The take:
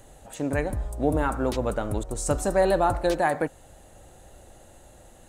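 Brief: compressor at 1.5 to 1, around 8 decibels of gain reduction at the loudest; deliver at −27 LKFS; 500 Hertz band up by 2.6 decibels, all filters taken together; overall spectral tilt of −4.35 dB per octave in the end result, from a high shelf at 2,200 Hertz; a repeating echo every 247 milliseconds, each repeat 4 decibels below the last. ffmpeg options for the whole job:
ffmpeg -i in.wav -af "equalizer=frequency=500:width_type=o:gain=3.5,highshelf=frequency=2200:gain=-6,acompressor=threshold=-38dB:ratio=1.5,aecho=1:1:247|494|741|988|1235|1482|1729|1976|2223:0.631|0.398|0.25|0.158|0.0994|0.0626|0.0394|0.0249|0.0157,volume=3dB" out.wav

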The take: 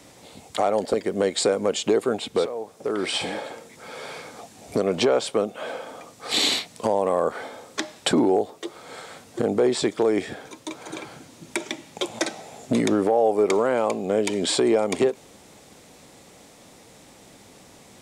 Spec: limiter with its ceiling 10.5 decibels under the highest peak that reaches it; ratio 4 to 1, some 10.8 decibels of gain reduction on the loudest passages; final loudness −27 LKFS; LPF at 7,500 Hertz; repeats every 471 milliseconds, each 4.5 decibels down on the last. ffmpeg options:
ffmpeg -i in.wav -af "lowpass=7500,acompressor=threshold=-29dB:ratio=4,alimiter=limit=-23dB:level=0:latency=1,aecho=1:1:471|942|1413|1884|2355|2826|3297|3768|4239:0.596|0.357|0.214|0.129|0.0772|0.0463|0.0278|0.0167|0.01,volume=6.5dB" out.wav

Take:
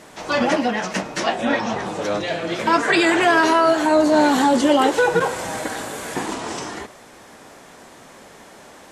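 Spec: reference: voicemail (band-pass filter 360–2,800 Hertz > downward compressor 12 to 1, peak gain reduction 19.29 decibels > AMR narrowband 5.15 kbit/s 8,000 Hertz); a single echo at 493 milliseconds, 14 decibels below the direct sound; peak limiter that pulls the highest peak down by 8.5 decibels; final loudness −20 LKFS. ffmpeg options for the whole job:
ffmpeg -i in.wav -af "alimiter=limit=-13dB:level=0:latency=1,highpass=360,lowpass=2800,aecho=1:1:493:0.2,acompressor=threshold=-36dB:ratio=12,volume=23dB" -ar 8000 -c:a libopencore_amrnb -b:a 5150 out.amr

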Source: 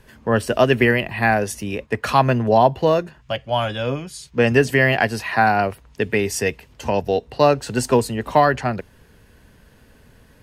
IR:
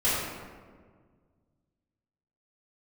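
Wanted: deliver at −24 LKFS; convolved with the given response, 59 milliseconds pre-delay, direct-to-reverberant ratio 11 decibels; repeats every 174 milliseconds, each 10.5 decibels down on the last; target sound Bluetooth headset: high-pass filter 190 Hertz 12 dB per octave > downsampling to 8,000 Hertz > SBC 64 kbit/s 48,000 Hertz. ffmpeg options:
-filter_complex "[0:a]aecho=1:1:174|348|522:0.299|0.0896|0.0269,asplit=2[link_01][link_02];[1:a]atrim=start_sample=2205,adelay=59[link_03];[link_02][link_03]afir=irnorm=-1:irlink=0,volume=-24dB[link_04];[link_01][link_04]amix=inputs=2:normalize=0,highpass=190,aresample=8000,aresample=44100,volume=-4.5dB" -ar 48000 -c:a sbc -b:a 64k

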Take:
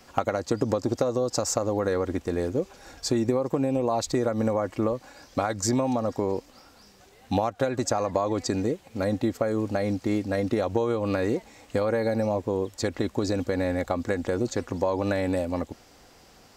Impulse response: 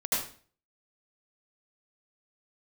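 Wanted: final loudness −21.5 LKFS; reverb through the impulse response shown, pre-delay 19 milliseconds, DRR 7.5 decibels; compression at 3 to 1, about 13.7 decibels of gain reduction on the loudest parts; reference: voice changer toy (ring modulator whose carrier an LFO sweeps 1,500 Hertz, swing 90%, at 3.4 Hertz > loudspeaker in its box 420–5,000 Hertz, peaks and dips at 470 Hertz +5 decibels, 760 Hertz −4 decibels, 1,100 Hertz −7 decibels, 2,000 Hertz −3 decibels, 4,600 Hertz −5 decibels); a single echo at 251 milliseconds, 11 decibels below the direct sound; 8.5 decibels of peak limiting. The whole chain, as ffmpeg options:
-filter_complex "[0:a]acompressor=threshold=-41dB:ratio=3,alimiter=level_in=6dB:limit=-24dB:level=0:latency=1,volume=-6dB,aecho=1:1:251:0.282,asplit=2[link_01][link_02];[1:a]atrim=start_sample=2205,adelay=19[link_03];[link_02][link_03]afir=irnorm=-1:irlink=0,volume=-16dB[link_04];[link_01][link_04]amix=inputs=2:normalize=0,aeval=exprs='val(0)*sin(2*PI*1500*n/s+1500*0.9/3.4*sin(2*PI*3.4*n/s))':channel_layout=same,highpass=420,equalizer=frequency=470:width_type=q:width=4:gain=5,equalizer=frequency=760:width_type=q:width=4:gain=-4,equalizer=frequency=1100:width_type=q:width=4:gain=-7,equalizer=frequency=2000:width_type=q:width=4:gain=-3,equalizer=frequency=4600:width_type=q:width=4:gain=-5,lowpass=frequency=5000:width=0.5412,lowpass=frequency=5000:width=1.3066,volume=22.5dB"

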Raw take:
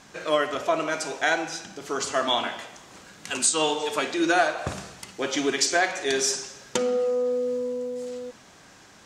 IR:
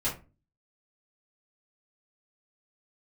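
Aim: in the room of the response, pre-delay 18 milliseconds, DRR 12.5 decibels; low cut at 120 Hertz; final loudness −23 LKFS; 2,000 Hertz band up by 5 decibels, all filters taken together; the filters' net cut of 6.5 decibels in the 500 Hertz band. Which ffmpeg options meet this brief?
-filter_complex "[0:a]highpass=120,equalizer=frequency=500:width_type=o:gain=-8.5,equalizer=frequency=2000:width_type=o:gain=7.5,asplit=2[link_01][link_02];[1:a]atrim=start_sample=2205,adelay=18[link_03];[link_02][link_03]afir=irnorm=-1:irlink=0,volume=-19.5dB[link_04];[link_01][link_04]amix=inputs=2:normalize=0,volume=1.5dB"

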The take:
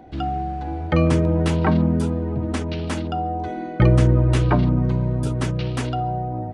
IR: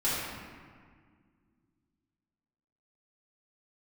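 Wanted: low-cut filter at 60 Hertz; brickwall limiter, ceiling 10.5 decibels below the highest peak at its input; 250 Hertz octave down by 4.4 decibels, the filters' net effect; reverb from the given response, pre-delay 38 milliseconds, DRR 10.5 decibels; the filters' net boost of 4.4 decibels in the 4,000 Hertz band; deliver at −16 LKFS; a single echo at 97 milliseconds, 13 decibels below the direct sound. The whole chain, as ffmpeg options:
-filter_complex "[0:a]highpass=60,equalizer=frequency=250:width_type=o:gain=-7,equalizer=frequency=4000:width_type=o:gain=6,alimiter=limit=-16.5dB:level=0:latency=1,aecho=1:1:97:0.224,asplit=2[link_01][link_02];[1:a]atrim=start_sample=2205,adelay=38[link_03];[link_02][link_03]afir=irnorm=-1:irlink=0,volume=-20.5dB[link_04];[link_01][link_04]amix=inputs=2:normalize=0,volume=9dB"

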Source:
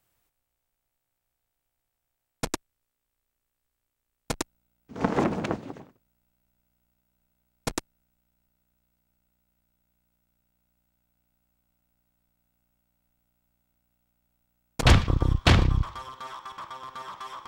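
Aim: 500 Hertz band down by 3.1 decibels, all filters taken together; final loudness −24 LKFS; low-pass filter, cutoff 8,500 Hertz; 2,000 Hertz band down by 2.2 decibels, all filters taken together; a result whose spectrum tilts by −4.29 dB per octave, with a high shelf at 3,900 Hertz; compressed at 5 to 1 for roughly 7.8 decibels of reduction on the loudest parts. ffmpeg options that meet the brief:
ffmpeg -i in.wav -af "lowpass=8500,equalizer=frequency=500:width_type=o:gain=-4,equalizer=frequency=2000:width_type=o:gain=-5,highshelf=frequency=3900:gain=8.5,acompressor=threshold=-21dB:ratio=5,volume=8dB" out.wav

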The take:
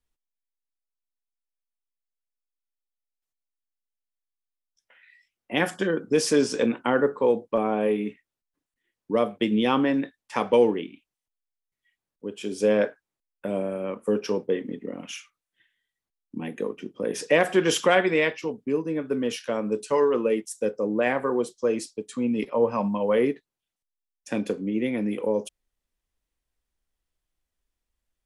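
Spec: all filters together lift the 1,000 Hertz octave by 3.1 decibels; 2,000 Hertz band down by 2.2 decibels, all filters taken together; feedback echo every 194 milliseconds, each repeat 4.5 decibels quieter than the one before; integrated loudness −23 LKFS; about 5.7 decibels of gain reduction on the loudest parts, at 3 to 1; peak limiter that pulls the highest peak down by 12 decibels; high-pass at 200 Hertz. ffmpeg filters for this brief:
ffmpeg -i in.wav -af "highpass=200,equalizer=frequency=1000:width_type=o:gain=5,equalizer=frequency=2000:width_type=o:gain=-4.5,acompressor=threshold=-22dB:ratio=3,alimiter=limit=-22.5dB:level=0:latency=1,aecho=1:1:194|388|582|776|970|1164|1358|1552|1746:0.596|0.357|0.214|0.129|0.0772|0.0463|0.0278|0.0167|0.01,volume=8.5dB" out.wav

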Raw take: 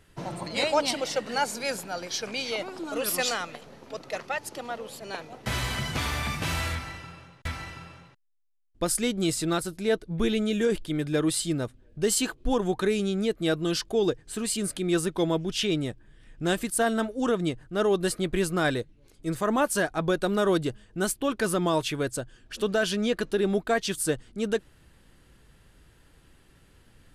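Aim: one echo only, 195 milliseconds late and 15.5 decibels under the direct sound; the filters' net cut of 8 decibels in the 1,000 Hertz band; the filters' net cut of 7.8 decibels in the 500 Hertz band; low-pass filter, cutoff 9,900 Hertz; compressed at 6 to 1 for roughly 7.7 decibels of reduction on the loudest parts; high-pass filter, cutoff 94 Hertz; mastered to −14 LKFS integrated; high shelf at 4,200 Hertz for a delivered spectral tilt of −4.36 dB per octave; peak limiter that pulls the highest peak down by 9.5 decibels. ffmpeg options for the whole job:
ffmpeg -i in.wav -af "highpass=94,lowpass=9900,equalizer=frequency=500:width_type=o:gain=-8.5,equalizer=frequency=1000:width_type=o:gain=-7.5,highshelf=frequency=4200:gain=-7,acompressor=threshold=-33dB:ratio=6,alimiter=level_in=7dB:limit=-24dB:level=0:latency=1,volume=-7dB,aecho=1:1:195:0.168,volume=26.5dB" out.wav

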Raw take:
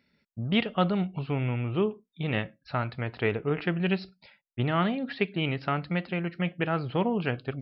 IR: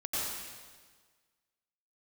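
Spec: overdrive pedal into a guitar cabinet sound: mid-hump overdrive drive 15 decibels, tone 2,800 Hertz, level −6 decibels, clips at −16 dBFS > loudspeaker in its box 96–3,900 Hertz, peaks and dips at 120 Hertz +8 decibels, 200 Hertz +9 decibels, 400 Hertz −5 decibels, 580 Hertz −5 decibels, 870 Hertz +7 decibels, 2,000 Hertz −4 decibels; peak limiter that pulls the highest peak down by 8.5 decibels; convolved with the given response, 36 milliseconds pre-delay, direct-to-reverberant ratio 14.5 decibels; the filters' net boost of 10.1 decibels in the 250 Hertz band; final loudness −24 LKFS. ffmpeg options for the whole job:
-filter_complex "[0:a]equalizer=frequency=250:width_type=o:gain=7,alimiter=limit=-18dB:level=0:latency=1,asplit=2[link_01][link_02];[1:a]atrim=start_sample=2205,adelay=36[link_03];[link_02][link_03]afir=irnorm=-1:irlink=0,volume=-20.5dB[link_04];[link_01][link_04]amix=inputs=2:normalize=0,asplit=2[link_05][link_06];[link_06]highpass=frequency=720:poles=1,volume=15dB,asoftclip=type=tanh:threshold=-16dB[link_07];[link_05][link_07]amix=inputs=2:normalize=0,lowpass=frequency=2800:poles=1,volume=-6dB,highpass=96,equalizer=frequency=120:width_type=q:width=4:gain=8,equalizer=frequency=200:width_type=q:width=4:gain=9,equalizer=frequency=400:width_type=q:width=4:gain=-5,equalizer=frequency=580:width_type=q:width=4:gain=-5,equalizer=frequency=870:width_type=q:width=4:gain=7,equalizer=frequency=2000:width_type=q:width=4:gain=-4,lowpass=frequency=3900:width=0.5412,lowpass=frequency=3900:width=1.3066,volume=1.5dB"

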